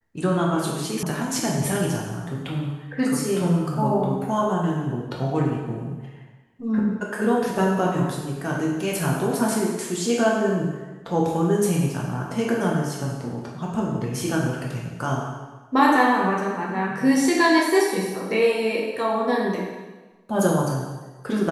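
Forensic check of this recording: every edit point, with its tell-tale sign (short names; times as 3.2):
1.03 sound cut off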